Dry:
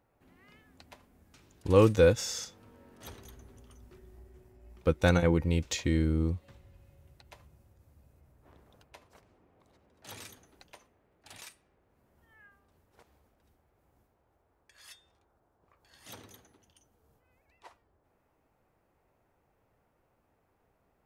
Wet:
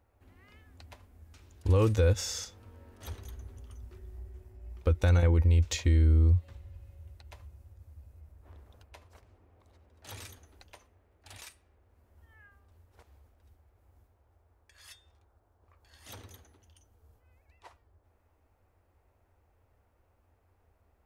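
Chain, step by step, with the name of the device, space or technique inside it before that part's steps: car stereo with a boomy subwoofer (resonant low shelf 110 Hz +7 dB, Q 3; limiter -16 dBFS, peak gain reduction 8.5 dB)

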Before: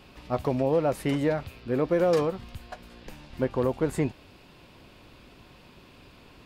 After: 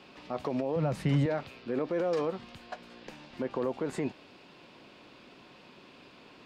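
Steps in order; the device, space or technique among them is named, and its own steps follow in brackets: DJ mixer with the lows and highs turned down (three-band isolator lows -20 dB, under 160 Hz, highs -17 dB, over 7300 Hz; limiter -22.5 dBFS, peak gain reduction 9 dB); 0.76–1.26 resonant low shelf 220 Hz +13 dB, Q 1.5

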